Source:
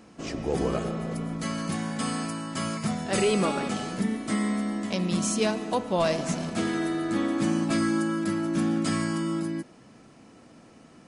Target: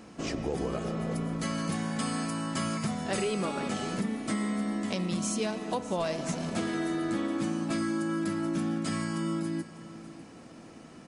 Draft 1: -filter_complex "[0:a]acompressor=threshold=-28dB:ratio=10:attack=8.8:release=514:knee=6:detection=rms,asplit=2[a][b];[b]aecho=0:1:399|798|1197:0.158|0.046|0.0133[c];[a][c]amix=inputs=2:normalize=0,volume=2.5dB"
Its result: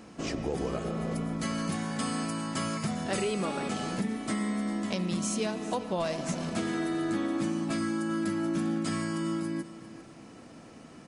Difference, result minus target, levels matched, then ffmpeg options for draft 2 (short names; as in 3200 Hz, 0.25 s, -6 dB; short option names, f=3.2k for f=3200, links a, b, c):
echo 0.202 s early
-filter_complex "[0:a]acompressor=threshold=-28dB:ratio=10:attack=8.8:release=514:knee=6:detection=rms,asplit=2[a][b];[b]aecho=0:1:601|1202|1803:0.158|0.046|0.0133[c];[a][c]amix=inputs=2:normalize=0,volume=2.5dB"